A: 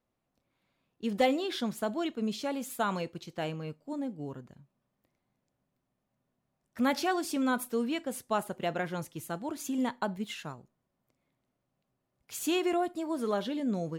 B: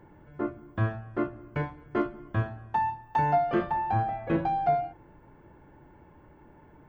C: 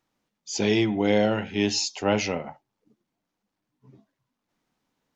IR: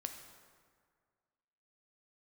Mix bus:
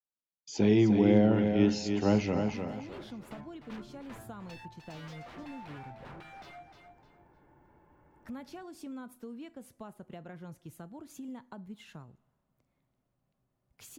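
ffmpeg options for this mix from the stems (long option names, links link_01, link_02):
-filter_complex "[0:a]lowshelf=frequency=190:gain=12,acompressor=threshold=-41dB:ratio=2.5,adelay=1500,volume=-6dB,asplit=2[link_01][link_02];[link_02]volume=-17dB[link_03];[1:a]aeval=exprs='0.0282*(abs(mod(val(0)/0.0282+3,4)-2)-1)':channel_layout=same,adynamicequalizer=threshold=0.00251:dfrequency=2100:dqfactor=0.7:tfrequency=2100:tqfactor=0.7:attack=5:release=100:ratio=0.375:range=2.5:mode=cutabove:tftype=highshelf,adelay=1750,volume=-10.5dB,asplit=2[link_04][link_05];[link_05]volume=-10dB[link_06];[2:a]agate=range=-33dB:threshold=-46dB:ratio=3:detection=peak,highshelf=frequency=5400:gain=-9.5,volume=1.5dB,asplit=2[link_07][link_08];[link_08]volume=-7dB[link_09];[3:a]atrim=start_sample=2205[link_10];[link_03][link_10]afir=irnorm=-1:irlink=0[link_11];[link_06][link_09]amix=inputs=2:normalize=0,aecho=0:1:304|608|912|1216:1|0.22|0.0484|0.0106[link_12];[link_01][link_04][link_07][link_11][link_12]amix=inputs=5:normalize=0,equalizer=frequency=1000:width_type=o:width=2.3:gain=4,acrossover=split=350[link_13][link_14];[link_14]acompressor=threshold=-57dB:ratio=1.5[link_15];[link_13][link_15]amix=inputs=2:normalize=0"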